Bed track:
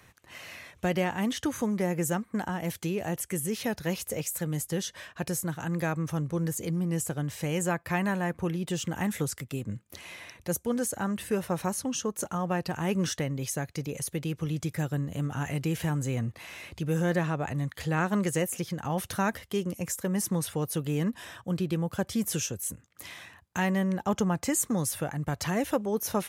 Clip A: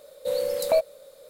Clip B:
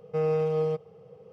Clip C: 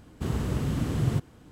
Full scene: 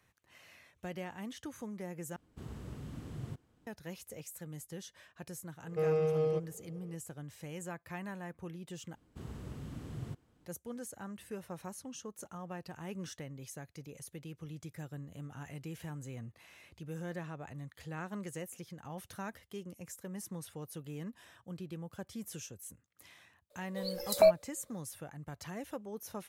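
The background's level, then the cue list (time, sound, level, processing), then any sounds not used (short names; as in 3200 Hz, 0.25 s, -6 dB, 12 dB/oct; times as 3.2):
bed track -14.5 dB
2.16 replace with C -17 dB
5.63 add B -4 dB + bell 940 Hz -7 dB 0.48 oct
8.95 replace with C -16.5 dB
23.5 add A -1 dB + spectral noise reduction 15 dB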